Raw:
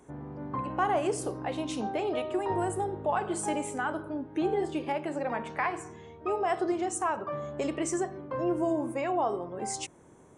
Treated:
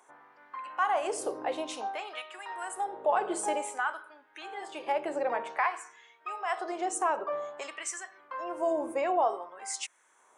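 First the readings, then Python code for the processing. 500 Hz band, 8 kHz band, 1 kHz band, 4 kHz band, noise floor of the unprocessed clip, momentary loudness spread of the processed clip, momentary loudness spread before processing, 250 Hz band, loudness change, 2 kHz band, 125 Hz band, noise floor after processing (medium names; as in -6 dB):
-2.0 dB, 0.0 dB, +0.5 dB, +0.5 dB, -55 dBFS, 13 LU, 7 LU, -9.5 dB, -1.0 dB, +1.5 dB, under -25 dB, -64 dBFS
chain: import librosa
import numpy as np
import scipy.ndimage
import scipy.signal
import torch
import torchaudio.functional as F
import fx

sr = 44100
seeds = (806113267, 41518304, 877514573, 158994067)

y = fx.filter_lfo_highpass(x, sr, shape='sine', hz=0.53, low_hz=440.0, high_hz=1700.0, q=1.3)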